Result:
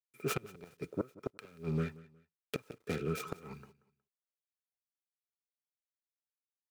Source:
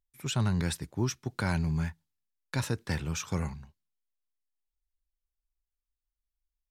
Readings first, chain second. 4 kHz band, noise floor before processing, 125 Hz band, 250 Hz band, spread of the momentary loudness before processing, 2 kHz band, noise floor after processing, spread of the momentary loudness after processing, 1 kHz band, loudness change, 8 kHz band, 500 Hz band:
-10.5 dB, under -85 dBFS, -11.0 dB, -7.0 dB, 7 LU, -8.0 dB, under -85 dBFS, 14 LU, -6.5 dB, -7.5 dB, -11.5 dB, +0.5 dB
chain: self-modulated delay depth 0.68 ms; HPF 160 Hz 12 dB/oct; high shelf 2900 Hz -5 dB; rotary speaker horn 5.5 Hz, later 0.7 Hz, at 1.21; small resonant body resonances 430/1300/2400 Hz, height 17 dB, ringing for 40 ms; flipped gate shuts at -22 dBFS, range -26 dB; requantised 12-bit, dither none; on a send: feedback echo 0.182 s, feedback 30%, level -20.5 dB

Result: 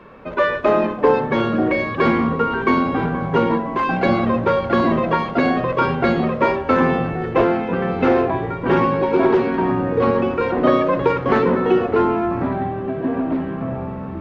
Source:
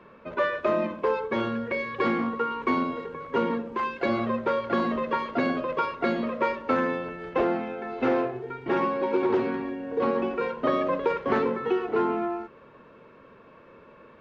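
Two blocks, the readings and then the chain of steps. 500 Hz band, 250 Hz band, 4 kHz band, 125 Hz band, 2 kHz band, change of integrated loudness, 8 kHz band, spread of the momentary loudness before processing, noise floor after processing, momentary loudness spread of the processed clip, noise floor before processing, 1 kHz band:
+8.5 dB, +10.0 dB, +8.0 dB, +16.5 dB, +8.5 dB, +8.5 dB, n/a, 5 LU, -28 dBFS, 6 LU, -52 dBFS, +8.5 dB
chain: low shelf 71 Hz +8.5 dB; echoes that change speed 0.116 s, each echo -6 st, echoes 3, each echo -6 dB; gain +7.5 dB

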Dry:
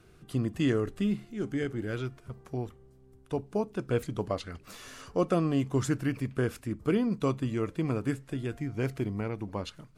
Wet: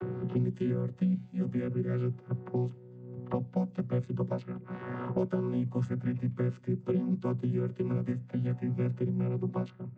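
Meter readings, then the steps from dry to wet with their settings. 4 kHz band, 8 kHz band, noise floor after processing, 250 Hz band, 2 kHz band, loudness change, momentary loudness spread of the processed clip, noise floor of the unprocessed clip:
under -10 dB, under -20 dB, -52 dBFS, -1.0 dB, -8.5 dB, -1.0 dB, 6 LU, -57 dBFS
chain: chord vocoder bare fifth, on B2; low-pass opened by the level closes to 1300 Hz, open at -29 dBFS; three-band squash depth 100%

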